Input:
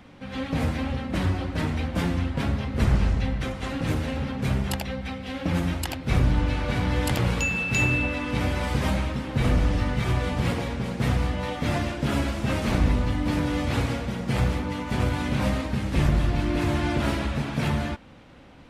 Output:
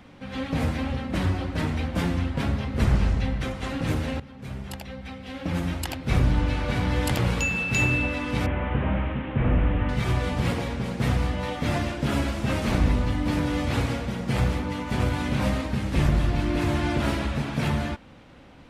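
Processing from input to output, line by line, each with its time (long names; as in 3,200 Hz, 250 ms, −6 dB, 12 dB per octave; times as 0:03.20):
0:04.20–0:06.09: fade in, from −16.5 dB
0:08.46–0:09.89: linear delta modulator 16 kbit/s, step −36.5 dBFS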